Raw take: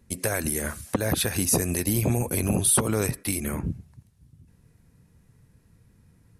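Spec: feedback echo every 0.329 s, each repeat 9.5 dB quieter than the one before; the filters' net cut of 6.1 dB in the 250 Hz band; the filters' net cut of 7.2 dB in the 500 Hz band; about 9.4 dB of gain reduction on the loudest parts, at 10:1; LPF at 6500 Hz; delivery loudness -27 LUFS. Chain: LPF 6500 Hz; bell 250 Hz -6.5 dB; bell 500 Hz -7 dB; compressor 10:1, threshold -32 dBFS; feedback echo 0.329 s, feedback 33%, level -9.5 dB; gain +9.5 dB

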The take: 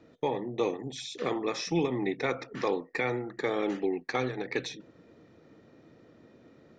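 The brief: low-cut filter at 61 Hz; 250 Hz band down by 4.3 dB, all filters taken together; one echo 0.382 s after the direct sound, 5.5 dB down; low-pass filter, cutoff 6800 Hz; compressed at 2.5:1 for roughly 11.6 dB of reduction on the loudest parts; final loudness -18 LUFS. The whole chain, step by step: HPF 61 Hz; LPF 6800 Hz; bell 250 Hz -6.5 dB; compressor 2.5:1, threshold -44 dBFS; echo 0.382 s -5.5 dB; gain +25 dB

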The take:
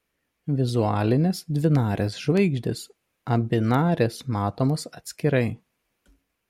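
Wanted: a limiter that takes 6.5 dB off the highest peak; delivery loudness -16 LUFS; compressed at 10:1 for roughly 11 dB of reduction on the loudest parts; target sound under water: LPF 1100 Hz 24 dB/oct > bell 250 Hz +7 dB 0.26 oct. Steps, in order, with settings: compressor 10:1, threshold -27 dBFS; limiter -23 dBFS; LPF 1100 Hz 24 dB/oct; bell 250 Hz +7 dB 0.26 oct; gain +17.5 dB

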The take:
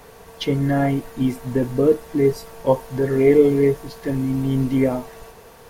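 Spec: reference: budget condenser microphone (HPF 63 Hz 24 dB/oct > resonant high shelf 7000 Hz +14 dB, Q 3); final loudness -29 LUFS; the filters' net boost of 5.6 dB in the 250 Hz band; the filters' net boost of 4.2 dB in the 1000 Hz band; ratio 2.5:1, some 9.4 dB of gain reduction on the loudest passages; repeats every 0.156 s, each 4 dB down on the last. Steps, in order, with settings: bell 250 Hz +6 dB; bell 1000 Hz +5.5 dB; compressor 2.5:1, threshold -21 dBFS; HPF 63 Hz 24 dB/oct; resonant high shelf 7000 Hz +14 dB, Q 3; feedback echo 0.156 s, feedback 63%, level -4 dB; gain -8 dB

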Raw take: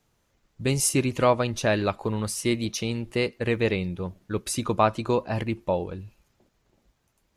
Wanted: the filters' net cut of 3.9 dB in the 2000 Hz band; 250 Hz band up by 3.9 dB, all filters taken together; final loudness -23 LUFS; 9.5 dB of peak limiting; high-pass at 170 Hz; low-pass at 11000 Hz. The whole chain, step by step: HPF 170 Hz; LPF 11000 Hz; bell 250 Hz +6 dB; bell 2000 Hz -5 dB; gain +4.5 dB; limiter -10 dBFS

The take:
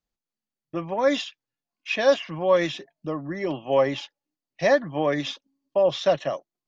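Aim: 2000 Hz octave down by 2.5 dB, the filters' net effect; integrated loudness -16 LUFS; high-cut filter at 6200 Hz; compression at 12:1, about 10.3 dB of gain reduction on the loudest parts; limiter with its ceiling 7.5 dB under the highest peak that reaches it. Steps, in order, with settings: LPF 6200 Hz; bell 2000 Hz -3 dB; compressor 12:1, threshold -24 dBFS; gain +17.5 dB; limiter -5 dBFS

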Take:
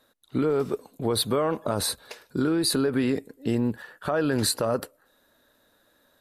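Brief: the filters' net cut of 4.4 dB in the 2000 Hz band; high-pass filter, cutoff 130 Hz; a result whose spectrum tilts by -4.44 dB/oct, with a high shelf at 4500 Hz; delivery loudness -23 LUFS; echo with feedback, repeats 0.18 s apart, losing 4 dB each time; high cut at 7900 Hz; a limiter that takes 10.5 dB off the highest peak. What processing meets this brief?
HPF 130 Hz; LPF 7900 Hz; bell 2000 Hz -7.5 dB; high shelf 4500 Hz +6.5 dB; limiter -21 dBFS; feedback echo 0.18 s, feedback 63%, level -4 dB; gain +6.5 dB

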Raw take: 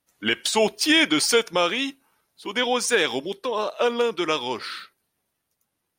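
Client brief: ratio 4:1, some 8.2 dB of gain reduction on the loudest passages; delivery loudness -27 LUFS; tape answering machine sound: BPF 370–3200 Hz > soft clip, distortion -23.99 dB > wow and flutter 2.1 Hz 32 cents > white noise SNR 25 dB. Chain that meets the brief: compressor 4:1, threshold -24 dBFS; BPF 370–3200 Hz; soft clip -16 dBFS; wow and flutter 2.1 Hz 32 cents; white noise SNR 25 dB; gain +4 dB

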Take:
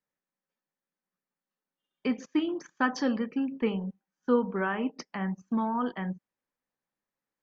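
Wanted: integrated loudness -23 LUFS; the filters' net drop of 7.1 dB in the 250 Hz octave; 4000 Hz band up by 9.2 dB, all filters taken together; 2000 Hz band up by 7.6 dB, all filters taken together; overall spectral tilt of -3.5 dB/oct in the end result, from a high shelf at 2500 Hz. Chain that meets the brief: bell 250 Hz -8.5 dB; bell 2000 Hz +7 dB; high shelf 2500 Hz +4.5 dB; bell 4000 Hz +6 dB; gain +7.5 dB

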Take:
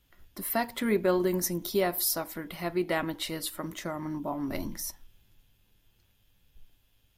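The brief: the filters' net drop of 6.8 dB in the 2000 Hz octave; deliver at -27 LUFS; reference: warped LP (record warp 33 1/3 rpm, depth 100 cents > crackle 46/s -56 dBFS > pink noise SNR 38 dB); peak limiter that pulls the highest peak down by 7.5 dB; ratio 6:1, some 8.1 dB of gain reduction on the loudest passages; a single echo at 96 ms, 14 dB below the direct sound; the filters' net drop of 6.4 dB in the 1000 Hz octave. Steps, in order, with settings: bell 1000 Hz -8.5 dB; bell 2000 Hz -5.5 dB; compressor 6:1, threshold -31 dBFS; limiter -27.5 dBFS; echo 96 ms -14 dB; record warp 33 1/3 rpm, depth 100 cents; crackle 46/s -56 dBFS; pink noise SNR 38 dB; gain +10.5 dB

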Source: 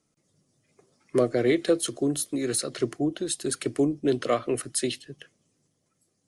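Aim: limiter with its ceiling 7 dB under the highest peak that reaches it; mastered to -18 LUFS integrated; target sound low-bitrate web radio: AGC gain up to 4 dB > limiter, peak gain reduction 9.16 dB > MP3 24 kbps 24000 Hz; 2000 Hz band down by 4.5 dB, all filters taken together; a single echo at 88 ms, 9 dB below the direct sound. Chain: bell 2000 Hz -5.5 dB; limiter -17.5 dBFS; echo 88 ms -9 dB; AGC gain up to 4 dB; limiter -25.5 dBFS; gain +18 dB; MP3 24 kbps 24000 Hz

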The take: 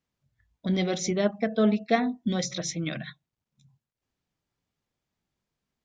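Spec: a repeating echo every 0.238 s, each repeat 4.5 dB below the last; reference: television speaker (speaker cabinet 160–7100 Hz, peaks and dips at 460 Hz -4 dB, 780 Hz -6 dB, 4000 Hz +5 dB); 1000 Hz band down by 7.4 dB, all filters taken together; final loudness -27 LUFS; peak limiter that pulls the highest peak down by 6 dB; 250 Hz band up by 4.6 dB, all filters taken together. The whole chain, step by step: bell 250 Hz +7 dB; bell 1000 Hz -8.5 dB; limiter -15.5 dBFS; speaker cabinet 160–7100 Hz, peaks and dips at 460 Hz -4 dB, 780 Hz -6 dB, 4000 Hz +5 dB; feedback echo 0.238 s, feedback 60%, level -4.5 dB; gain -1.5 dB

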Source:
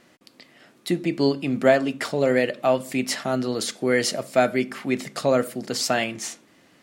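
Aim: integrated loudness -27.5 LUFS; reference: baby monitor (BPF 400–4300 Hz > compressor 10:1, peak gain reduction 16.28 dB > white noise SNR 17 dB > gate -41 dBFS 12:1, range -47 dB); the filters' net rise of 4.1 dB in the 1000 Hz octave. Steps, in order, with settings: BPF 400–4300 Hz; bell 1000 Hz +7 dB; compressor 10:1, threshold -26 dBFS; white noise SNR 17 dB; gate -41 dBFS 12:1, range -47 dB; gain +4.5 dB

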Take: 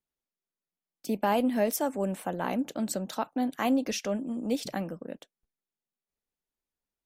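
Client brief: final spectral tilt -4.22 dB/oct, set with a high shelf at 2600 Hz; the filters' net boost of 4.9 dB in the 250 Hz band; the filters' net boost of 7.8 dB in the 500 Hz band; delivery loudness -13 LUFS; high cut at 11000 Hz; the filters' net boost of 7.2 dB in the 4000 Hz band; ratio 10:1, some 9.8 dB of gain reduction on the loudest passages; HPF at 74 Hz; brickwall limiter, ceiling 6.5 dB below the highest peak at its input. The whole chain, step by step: HPF 74 Hz; LPF 11000 Hz; bell 250 Hz +3.5 dB; bell 500 Hz +8.5 dB; high shelf 2600 Hz +5.5 dB; bell 4000 Hz +4.5 dB; compressor 10:1, threshold -25 dBFS; gain +19 dB; limiter -1.5 dBFS

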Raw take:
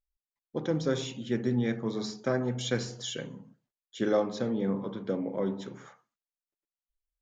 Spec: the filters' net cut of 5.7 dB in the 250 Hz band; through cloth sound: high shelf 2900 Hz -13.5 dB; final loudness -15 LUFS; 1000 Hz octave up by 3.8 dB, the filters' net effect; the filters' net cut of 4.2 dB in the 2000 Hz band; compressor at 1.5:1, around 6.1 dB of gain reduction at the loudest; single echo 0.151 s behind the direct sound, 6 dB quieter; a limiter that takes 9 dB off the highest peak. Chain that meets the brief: bell 250 Hz -7.5 dB; bell 1000 Hz +8.5 dB; bell 2000 Hz -5 dB; compressor 1.5:1, threshold -37 dBFS; limiter -27.5 dBFS; high shelf 2900 Hz -13.5 dB; echo 0.151 s -6 dB; gain +24.5 dB

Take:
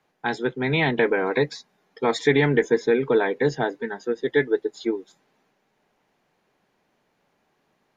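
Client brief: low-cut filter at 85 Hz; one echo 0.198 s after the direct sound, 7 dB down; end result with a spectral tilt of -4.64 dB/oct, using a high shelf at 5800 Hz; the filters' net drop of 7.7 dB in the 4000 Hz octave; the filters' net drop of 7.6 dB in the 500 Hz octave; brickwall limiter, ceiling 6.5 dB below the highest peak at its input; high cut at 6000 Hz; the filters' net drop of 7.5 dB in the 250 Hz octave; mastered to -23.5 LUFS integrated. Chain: HPF 85 Hz; LPF 6000 Hz; bell 250 Hz -7.5 dB; bell 500 Hz -6.5 dB; bell 4000 Hz -7 dB; high shelf 5800 Hz -4.5 dB; limiter -18 dBFS; echo 0.198 s -7 dB; gain +6.5 dB

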